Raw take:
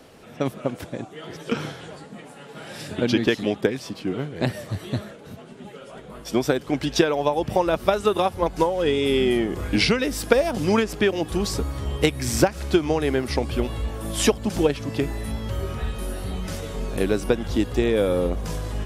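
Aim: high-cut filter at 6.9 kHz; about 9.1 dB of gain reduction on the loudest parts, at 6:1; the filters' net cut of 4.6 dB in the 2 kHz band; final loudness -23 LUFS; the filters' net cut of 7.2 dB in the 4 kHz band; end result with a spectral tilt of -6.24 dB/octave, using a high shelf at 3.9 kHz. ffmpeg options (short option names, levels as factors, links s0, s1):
-af "lowpass=6900,equalizer=f=2000:t=o:g=-3.5,highshelf=f=3900:g=-4.5,equalizer=f=4000:t=o:g=-5,acompressor=threshold=0.0631:ratio=6,volume=2.37"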